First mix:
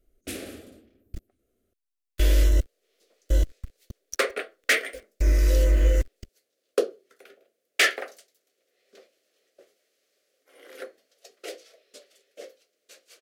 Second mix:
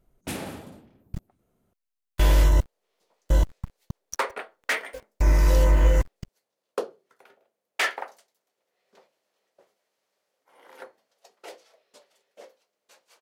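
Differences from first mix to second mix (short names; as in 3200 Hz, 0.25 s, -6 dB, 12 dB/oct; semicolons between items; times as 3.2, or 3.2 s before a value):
second sound -7.5 dB; master: remove fixed phaser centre 380 Hz, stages 4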